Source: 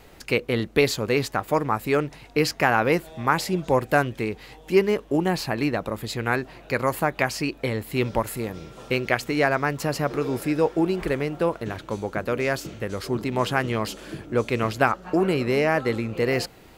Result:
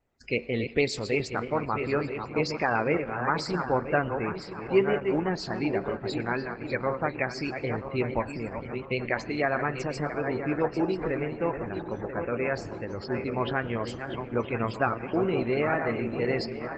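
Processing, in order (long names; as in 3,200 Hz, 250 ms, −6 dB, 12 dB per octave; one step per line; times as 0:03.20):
feedback delay that plays each chunk backwards 493 ms, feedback 64%, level −7 dB
noise gate with hold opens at −31 dBFS
high-shelf EQ 7,700 Hz +4 dB
tuned comb filter 77 Hz, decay 0.41 s, harmonics odd, mix 50%
spectral peaks only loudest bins 64
comb and all-pass reverb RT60 2.3 s, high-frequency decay 0.6×, pre-delay 70 ms, DRR 18.5 dB
Opus 12 kbit/s 48,000 Hz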